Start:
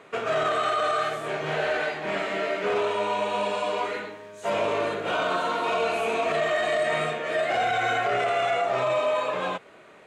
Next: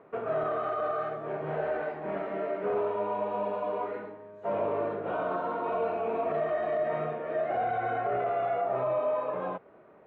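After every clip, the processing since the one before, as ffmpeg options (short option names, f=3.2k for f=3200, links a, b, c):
-af "lowpass=1k,volume=-3dB"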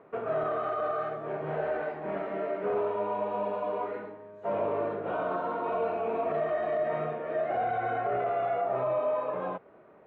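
-af anull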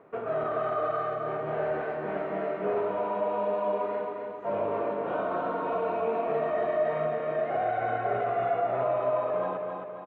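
-af "aecho=1:1:268|536|804|1072|1340|1608:0.596|0.298|0.149|0.0745|0.0372|0.0186"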